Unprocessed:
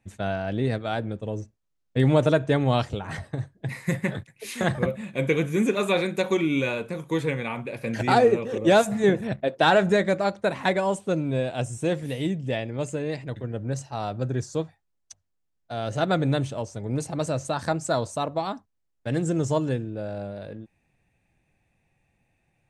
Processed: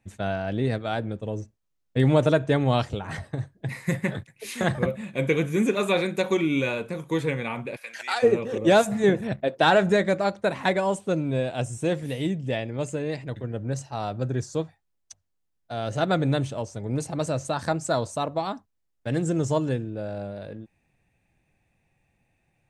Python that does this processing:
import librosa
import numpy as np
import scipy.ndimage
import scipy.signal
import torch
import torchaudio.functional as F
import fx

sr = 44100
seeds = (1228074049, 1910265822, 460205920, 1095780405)

y = fx.highpass(x, sr, hz=1400.0, slope=12, at=(7.75, 8.22), fade=0.02)